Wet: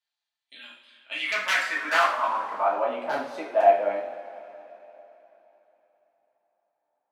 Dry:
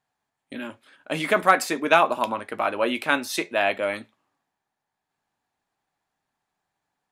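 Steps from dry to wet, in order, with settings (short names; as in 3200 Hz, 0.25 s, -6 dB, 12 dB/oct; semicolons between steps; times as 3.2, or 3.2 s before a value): wrapped overs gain 8 dB; two-slope reverb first 0.46 s, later 3.6 s, from -18 dB, DRR -5.5 dB; band-pass sweep 3800 Hz -> 700 Hz, 0.81–2.96; gain -2 dB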